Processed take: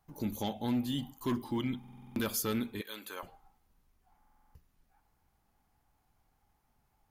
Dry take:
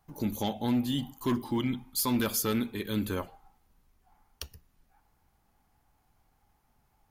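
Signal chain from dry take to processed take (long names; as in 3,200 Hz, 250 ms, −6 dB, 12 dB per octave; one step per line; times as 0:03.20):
0:02.81–0:03.23: high-pass filter 710 Hz 12 dB per octave
buffer that repeats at 0:01.79/0:04.18, samples 2,048, times 7
level −4 dB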